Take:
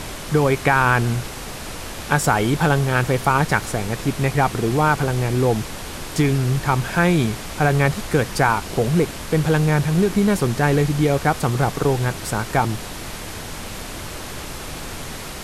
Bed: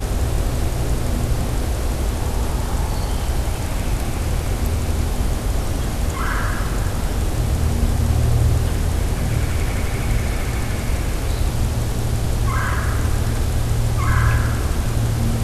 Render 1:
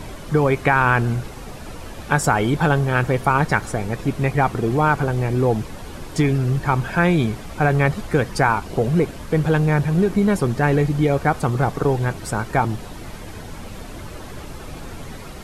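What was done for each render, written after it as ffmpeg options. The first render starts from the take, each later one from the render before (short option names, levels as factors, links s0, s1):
-af "afftdn=nr=10:nf=-32"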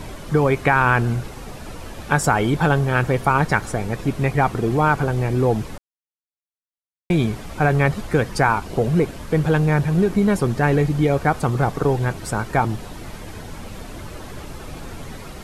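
-filter_complex "[0:a]asplit=3[s0][s1][s2];[s0]atrim=end=5.78,asetpts=PTS-STARTPTS,afade=t=out:st=5.776:d=0.004:c=hsin[s3];[s1]atrim=start=5.78:end=7.1,asetpts=PTS-STARTPTS,volume=0[s4];[s2]atrim=start=7.1,asetpts=PTS-STARTPTS,afade=t=in:d=0.004:c=hsin[s5];[s3][s4][s5]concat=n=3:v=0:a=1"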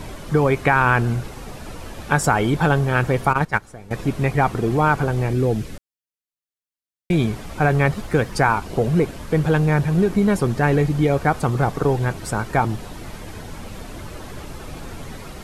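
-filter_complex "[0:a]asettb=1/sr,asplit=3[s0][s1][s2];[s0]atrim=end=3.334[s3];[s1]atrim=start=3.33:end=3.91,asetpts=PTS-STARTPTS,afade=t=in:d=0.004:c=qsin,afade=t=out:st=0.576:d=0.004:c=qsin,agate=range=0.178:threshold=0.126:ratio=16:release=100:detection=peak[s4];[s2]atrim=start=3.906[s5];[s3][s4]acrossfade=d=0.004:c1=hsin:c2=qsin[s6];[s6][s5]acrossfade=d=0.004:c1=qsin:c2=hsin,asettb=1/sr,asplit=3[s7][s8][s9];[s7]atrim=end=5.334[s10];[s8]atrim=start=5.33:end=7.13,asetpts=PTS-STARTPTS,afade=t=in:d=0.004:c=qsin,afade=t=out:st=1.796:d=0.004:c=qsin,equalizer=f=930:w=1.5:g=-10.5[s11];[s9]atrim=start=7.126[s12];[s10][s11]acrossfade=d=0.004:c1=hsin:c2=qsin[s13];[s13][s12]acrossfade=d=0.004:c1=qsin:c2=hsin,asettb=1/sr,asplit=3[s14][s15][s16];[s14]atrim=end=7.734[s17];[s15]atrim=start=7.73:end=8.33,asetpts=PTS-STARTPTS,afade=t=in:d=0.004:c=qsin,afade=t=out:st=0.596:d=0.004:c=qsin,aeval=exprs='sgn(val(0))*max(abs(val(0))-0.00316,0)':c=same[s18];[s16]atrim=start=8.326[s19];[s17][s18]acrossfade=d=0.004:c1=hsin:c2=qsin[s20];[s20][s19]acrossfade=d=0.004:c1=qsin:c2=hsin"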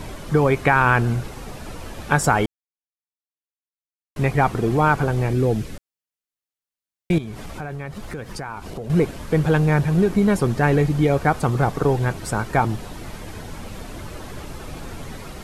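-filter_complex "[0:a]asettb=1/sr,asplit=3[s0][s1][s2];[s0]atrim=end=7.184[s3];[s1]atrim=start=7.18:end=8.9,asetpts=PTS-STARTPTS,afade=t=in:d=0.004:c=qsin,afade=t=out:st=1.716:d=0.004:c=qsin,acompressor=threshold=0.0355:ratio=5:attack=3.2:release=140:knee=1:detection=peak[s4];[s2]atrim=start=8.896[s5];[s3][s4]acrossfade=d=0.004:c1=hsin:c2=qsin[s6];[s6][s5]acrossfade=d=0.004:c1=qsin:c2=hsin,asplit=3[s7][s8][s9];[s7]atrim=end=2.46,asetpts=PTS-STARTPTS,afade=t=out:st=2.456:d=0.004:c=hsin[s10];[s8]atrim=start=2.46:end=4.16,asetpts=PTS-STARTPTS,volume=0[s11];[s9]atrim=start=4.16,asetpts=PTS-STARTPTS,afade=t=in:d=0.004:c=hsin[s12];[s10][s11][s12]concat=n=3:v=0:a=1"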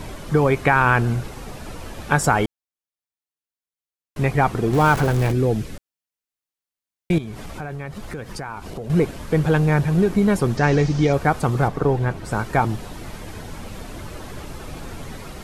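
-filter_complex "[0:a]asettb=1/sr,asplit=3[s0][s1][s2];[s0]atrim=end=4.734[s3];[s1]atrim=start=4.73:end=5.32,asetpts=PTS-STARTPTS,afade=t=in:d=0.004:c=qsin,afade=t=out:st=0.586:d=0.004:c=qsin,aeval=exprs='val(0)+0.5*0.0631*sgn(val(0))':c=same[s4];[s2]atrim=start=5.316[s5];[s3][s4]acrossfade=d=0.004:c1=hsin:c2=qsin[s6];[s6][s5]acrossfade=d=0.004:c1=qsin:c2=hsin,asettb=1/sr,asplit=3[s7][s8][s9];[s7]atrim=end=10.574[s10];[s8]atrim=start=10.57:end=11.13,asetpts=PTS-STARTPTS,afade=t=in:d=0.004:c=qsin,afade=t=out:st=0.556:d=0.004:c=qsin,lowpass=f=5700:t=q:w=3.3[s11];[s9]atrim=start=11.126[s12];[s10][s11]acrossfade=d=0.004:c1=hsin:c2=qsin[s13];[s13][s12]acrossfade=d=0.004:c1=qsin:c2=hsin,asettb=1/sr,asplit=3[s14][s15][s16];[s14]atrim=end=11.684[s17];[s15]atrim=start=11.68:end=12.31,asetpts=PTS-STARTPTS,afade=t=in:d=0.004:c=qsin,afade=t=out:st=0.626:d=0.004:c=qsin,highshelf=f=3600:g=-10[s18];[s16]atrim=start=12.306[s19];[s17][s18]acrossfade=d=0.004:c1=hsin:c2=qsin[s20];[s20][s19]acrossfade=d=0.004:c1=qsin:c2=hsin"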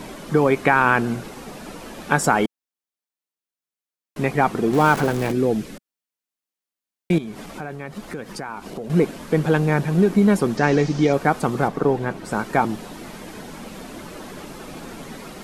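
-af "lowshelf=f=140:t=q:w=1.5:g=-11"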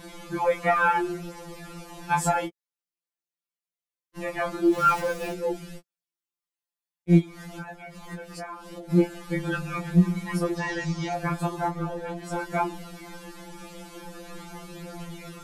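-af "flanger=delay=15:depth=3.6:speed=0.22,afftfilt=real='re*2.83*eq(mod(b,8),0)':imag='im*2.83*eq(mod(b,8),0)':win_size=2048:overlap=0.75"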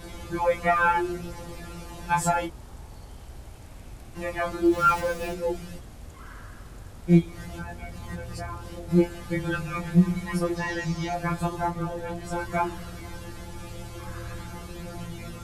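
-filter_complex "[1:a]volume=0.0794[s0];[0:a][s0]amix=inputs=2:normalize=0"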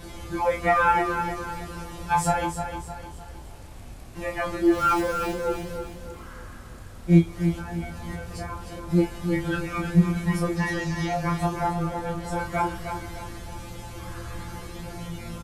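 -filter_complex "[0:a]asplit=2[s0][s1];[s1]adelay=30,volume=0.447[s2];[s0][s2]amix=inputs=2:normalize=0,aecho=1:1:307|614|921|1228|1535:0.398|0.167|0.0702|0.0295|0.0124"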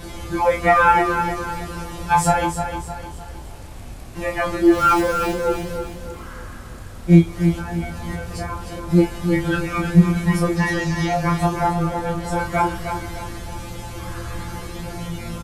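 -af "volume=2,alimiter=limit=0.891:level=0:latency=1"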